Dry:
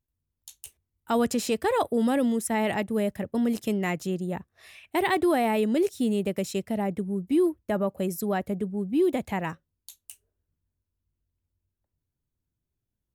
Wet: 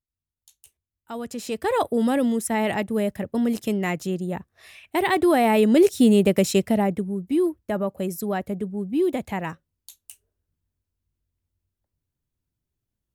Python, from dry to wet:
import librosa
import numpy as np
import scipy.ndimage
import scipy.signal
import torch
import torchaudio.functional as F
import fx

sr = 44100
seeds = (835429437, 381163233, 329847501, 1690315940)

y = fx.gain(x, sr, db=fx.line((1.23, -9.0), (1.74, 2.5), (5.04, 2.5), (5.98, 9.5), (6.64, 9.5), (7.16, 1.0)))